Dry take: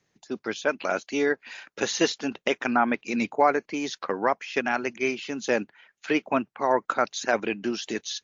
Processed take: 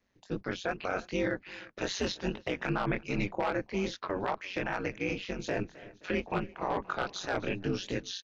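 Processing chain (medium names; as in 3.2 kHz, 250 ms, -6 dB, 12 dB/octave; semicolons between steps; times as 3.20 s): octave divider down 1 oct, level -4 dB; wavefolder -12 dBFS; chorus 2.5 Hz, delay 18.5 ms, depth 5.7 ms; distance through air 170 m; ring modulator 94 Hz; treble shelf 5.6 kHz +8.5 dB; echo from a far wall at 58 m, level -26 dB; peak limiter -23.5 dBFS, peak gain reduction 9.5 dB; 5.28–7.49 s: modulated delay 262 ms, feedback 51%, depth 53 cents, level -19 dB; trim +3 dB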